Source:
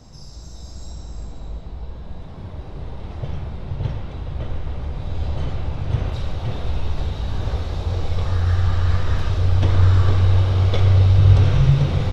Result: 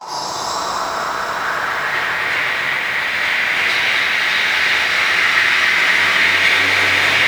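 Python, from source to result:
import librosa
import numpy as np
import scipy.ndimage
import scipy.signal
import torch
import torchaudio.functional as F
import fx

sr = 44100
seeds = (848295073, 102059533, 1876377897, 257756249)

p1 = fx.low_shelf(x, sr, hz=500.0, db=11.5)
p2 = fx.rider(p1, sr, range_db=3, speed_s=0.5)
p3 = p1 + (p2 * librosa.db_to_amplitude(-1.0))
p4 = fx.leveller(p3, sr, passes=5)
p5 = fx.filter_sweep_highpass(p4, sr, from_hz=950.0, to_hz=2000.0, start_s=0.14, end_s=3.97, q=3.7)
p6 = fx.stretch_vocoder_free(p5, sr, factor=0.6)
p7 = fx.room_shoebox(p6, sr, seeds[0], volume_m3=670.0, walls='mixed', distance_m=8.2)
p8 = fx.echo_crushed(p7, sr, ms=262, feedback_pct=80, bits=4, wet_db=-6.0)
y = p8 * librosa.db_to_amplitude(-15.5)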